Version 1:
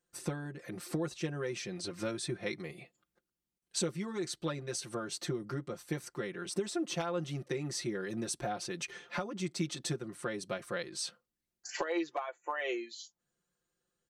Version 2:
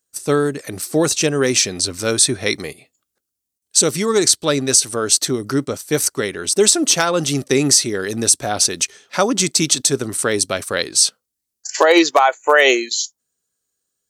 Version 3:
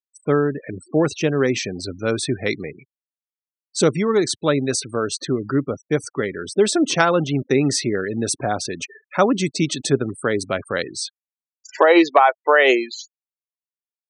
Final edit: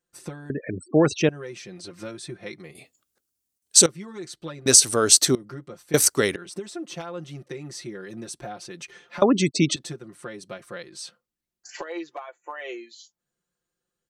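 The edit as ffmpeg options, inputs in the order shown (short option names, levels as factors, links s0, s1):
-filter_complex "[2:a]asplit=2[s0][s1];[1:a]asplit=3[s2][s3][s4];[0:a]asplit=6[s5][s6][s7][s8][s9][s10];[s5]atrim=end=0.502[s11];[s0]atrim=start=0.498:end=1.292[s12];[s6]atrim=start=1.288:end=2.752[s13];[s2]atrim=start=2.748:end=3.862[s14];[s7]atrim=start=3.858:end=4.662[s15];[s3]atrim=start=4.658:end=5.352[s16];[s8]atrim=start=5.348:end=5.942[s17];[s4]atrim=start=5.938:end=6.362[s18];[s9]atrim=start=6.358:end=9.222[s19];[s1]atrim=start=9.218:end=9.762[s20];[s10]atrim=start=9.758[s21];[s11][s12]acrossfade=d=0.004:c1=hsin:c2=hsin[s22];[s22][s13]acrossfade=d=0.004:c1=hsin:c2=hsin[s23];[s23][s14]acrossfade=d=0.004:c1=hsin:c2=hsin[s24];[s24][s15]acrossfade=d=0.004:c1=hsin:c2=hsin[s25];[s25][s16]acrossfade=d=0.004:c1=hsin:c2=hsin[s26];[s26][s17]acrossfade=d=0.004:c1=hsin:c2=hsin[s27];[s27][s18]acrossfade=d=0.004:c1=hsin:c2=hsin[s28];[s28][s19]acrossfade=d=0.004:c1=hsin:c2=hsin[s29];[s29][s20]acrossfade=d=0.004:c1=hsin:c2=hsin[s30];[s30][s21]acrossfade=d=0.004:c1=hsin:c2=hsin"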